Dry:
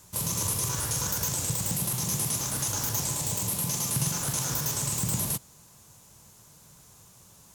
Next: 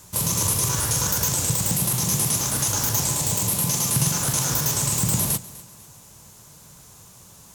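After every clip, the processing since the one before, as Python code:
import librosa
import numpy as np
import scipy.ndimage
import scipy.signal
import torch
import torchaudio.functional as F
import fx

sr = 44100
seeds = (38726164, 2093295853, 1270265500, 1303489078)

y = fx.echo_feedback(x, sr, ms=249, feedback_pct=37, wet_db=-19.0)
y = y * librosa.db_to_amplitude(6.5)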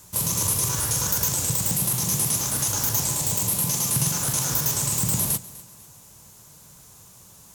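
y = fx.high_shelf(x, sr, hz=9800.0, db=5.0)
y = y * librosa.db_to_amplitude(-3.0)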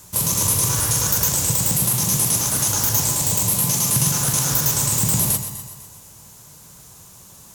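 y = fx.echo_feedback(x, sr, ms=125, feedback_pct=56, wet_db=-11)
y = y * librosa.db_to_amplitude(4.0)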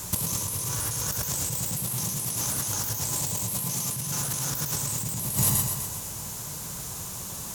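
y = fx.over_compress(x, sr, threshold_db=-29.0, ratio=-1.0)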